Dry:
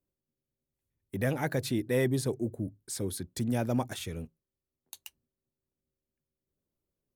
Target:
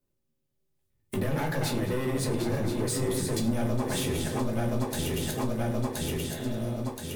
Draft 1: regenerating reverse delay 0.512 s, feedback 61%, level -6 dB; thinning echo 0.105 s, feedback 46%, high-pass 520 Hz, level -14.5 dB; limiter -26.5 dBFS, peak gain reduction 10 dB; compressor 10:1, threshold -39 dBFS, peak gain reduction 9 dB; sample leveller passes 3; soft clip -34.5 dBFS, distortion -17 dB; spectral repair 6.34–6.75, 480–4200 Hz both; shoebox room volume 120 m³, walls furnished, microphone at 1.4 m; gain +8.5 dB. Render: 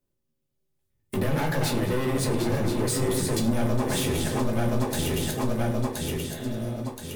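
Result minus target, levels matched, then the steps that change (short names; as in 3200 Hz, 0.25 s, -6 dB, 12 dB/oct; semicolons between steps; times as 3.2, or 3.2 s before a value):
compressor: peak gain reduction -6 dB
change: compressor 10:1, threshold -45.5 dBFS, peak gain reduction 15 dB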